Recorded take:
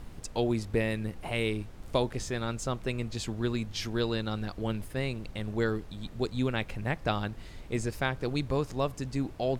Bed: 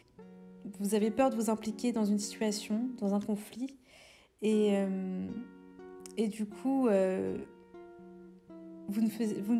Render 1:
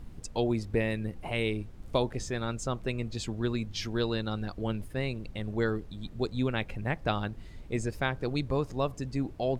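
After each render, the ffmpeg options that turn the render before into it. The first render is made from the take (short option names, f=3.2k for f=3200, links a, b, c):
-af "afftdn=nr=7:nf=-46"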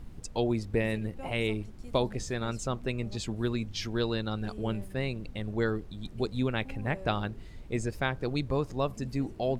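-filter_complex "[1:a]volume=-17.5dB[a];[0:a][a]amix=inputs=2:normalize=0"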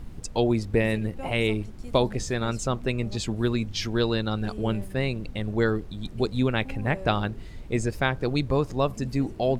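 -af "volume=5.5dB"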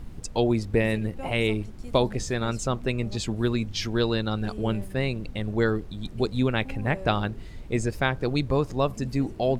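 -af anull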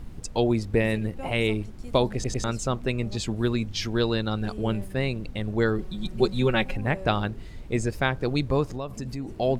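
-filter_complex "[0:a]asettb=1/sr,asplit=3[a][b][c];[a]atrim=end=5.784[d];[b]atrim=start=5.78:end=6.77,asetpts=PTS-STARTPTS,afade=t=in:d=0.004:c=qsin,afade=t=out:st=0.986:d=0.004:c=qsin,aecho=1:1:5.4:0.94,atrim=end_sample=43659[e];[c]atrim=start=6.766[f];[d][e]acrossfade=d=0.004:c1=hsin:c2=qsin[g];[g][f]acrossfade=d=0.004:c1=qsin:c2=hsin,asettb=1/sr,asplit=3[h][i][j];[h]atrim=end=8.664[k];[i]atrim=start=8.66:end=9.28,asetpts=PTS-STARTPTS,afade=t=in:d=0.004:c=qsin,afade=t=out:st=0.616:d=0.004:c=qsin,acompressor=threshold=-29dB:ratio=4:attack=3.2:release=140:knee=1:detection=peak[l];[j]atrim=start=9.276[m];[k][l]acrossfade=d=0.004:c1=hsin:c2=qsin[n];[n][m]acrossfade=d=0.004:c1=qsin:c2=hsin,asplit=4[o][p][q][r];[o]atrim=end=2.242[s];[p]atrim=start=2.138:end=2.242[t];[q]atrim=start=2.138:end=2.242[u];[r]atrim=start=2.438[v];[s][t]acrossfade=d=0.004:c1=hsin:c2=hsin[w];[w][u]acrossfade=d=0.004:c1=hsin:c2=hsin[x];[x][v]acrossfade=d=0.004:c1=hsin:c2=hsin"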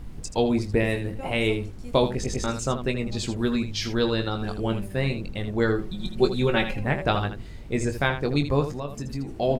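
-af "aecho=1:1:21|80:0.422|0.316"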